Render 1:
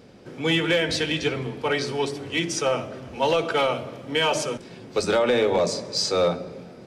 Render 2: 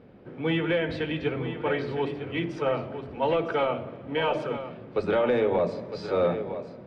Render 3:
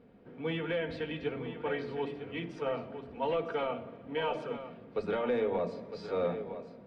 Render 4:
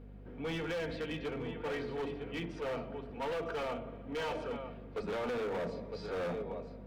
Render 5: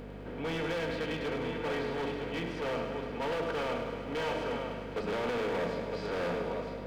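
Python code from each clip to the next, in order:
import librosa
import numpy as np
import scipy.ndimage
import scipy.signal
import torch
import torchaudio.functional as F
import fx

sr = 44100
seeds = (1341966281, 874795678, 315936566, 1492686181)

y1 = fx.air_absorb(x, sr, metres=490.0)
y1 = y1 + 10.0 ** (-10.5 / 20.0) * np.pad(y1, (int(958 * sr / 1000.0), 0))[:len(y1)]
y1 = y1 * librosa.db_to_amplitude(-1.5)
y2 = y1 + 0.37 * np.pad(y1, (int(4.3 * sr / 1000.0), 0))[:len(y1)]
y2 = y2 * librosa.db_to_amplitude(-8.0)
y3 = fx.add_hum(y2, sr, base_hz=50, snr_db=16)
y3 = np.clip(y3, -10.0 ** (-33.5 / 20.0), 10.0 ** (-33.5 / 20.0))
y4 = fx.bin_compress(y3, sr, power=0.6)
y4 = fx.echo_thinned(y4, sr, ms=103, feedback_pct=75, hz=420.0, wet_db=-9.0)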